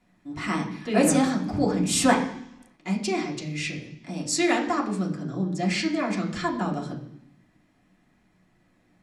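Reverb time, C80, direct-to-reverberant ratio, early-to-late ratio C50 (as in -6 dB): 0.70 s, 11.5 dB, -3.0 dB, 9.0 dB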